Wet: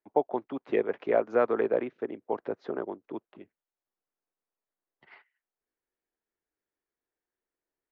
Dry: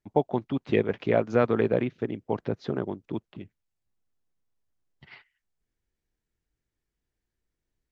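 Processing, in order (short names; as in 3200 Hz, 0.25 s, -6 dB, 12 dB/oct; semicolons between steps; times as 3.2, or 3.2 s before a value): three-band isolator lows -23 dB, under 300 Hz, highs -14 dB, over 2000 Hz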